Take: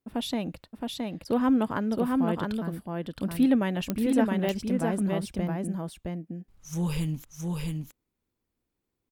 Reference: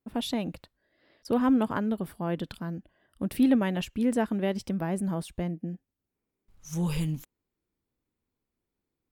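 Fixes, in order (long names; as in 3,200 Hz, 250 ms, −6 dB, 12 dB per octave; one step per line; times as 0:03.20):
click removal
echo removal 668 ms −3 dB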